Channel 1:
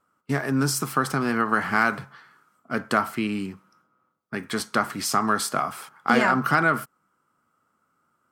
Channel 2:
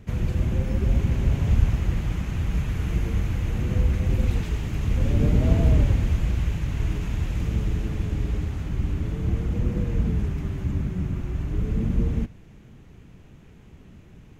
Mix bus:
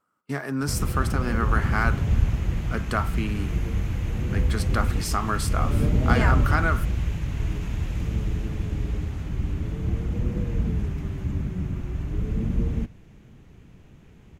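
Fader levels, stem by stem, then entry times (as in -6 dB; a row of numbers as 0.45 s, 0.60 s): -4.5 dB, -1.5 dB; 0.00 s, 0.60 s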